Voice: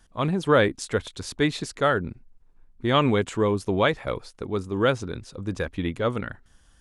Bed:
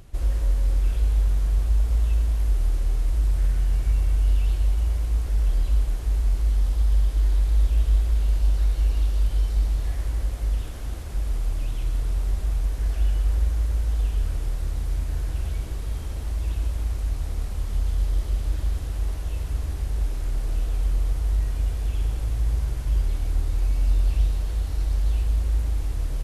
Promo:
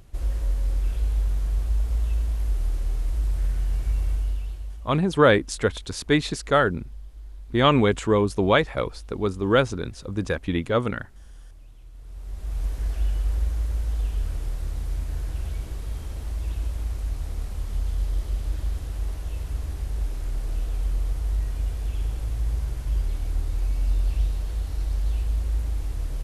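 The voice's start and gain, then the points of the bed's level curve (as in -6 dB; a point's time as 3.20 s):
4.70 s, +2.5 dB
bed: 4.11 s -3 dB
5.04 s -20.5 dB
11.92 s -20.5 dB
12.63 s -2.5 dB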